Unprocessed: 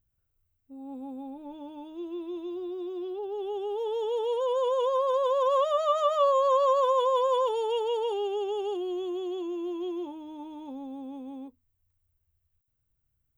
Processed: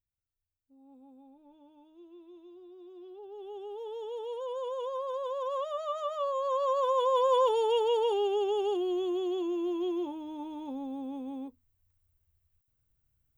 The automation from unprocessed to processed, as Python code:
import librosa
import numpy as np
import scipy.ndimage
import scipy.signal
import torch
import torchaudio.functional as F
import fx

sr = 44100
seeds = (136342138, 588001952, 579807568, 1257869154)

y = fx.gain(x, sr, db=fx.line((2.68, -16.0), (3.58, -9.0), (6.29, -9.0), (7.45, 1.5)))